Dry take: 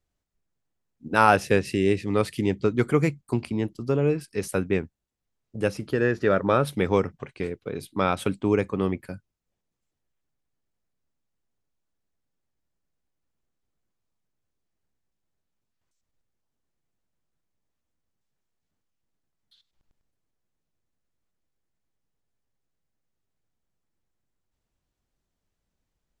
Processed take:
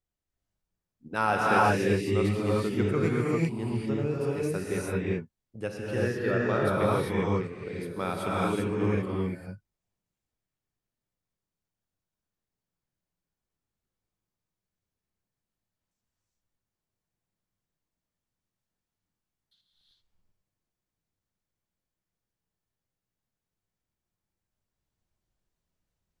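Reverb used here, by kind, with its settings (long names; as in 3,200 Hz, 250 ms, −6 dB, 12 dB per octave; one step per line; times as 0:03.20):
reverb whose tail is shaped and stops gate 420 ms rising, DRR −5.5 dB
level −9.5 dB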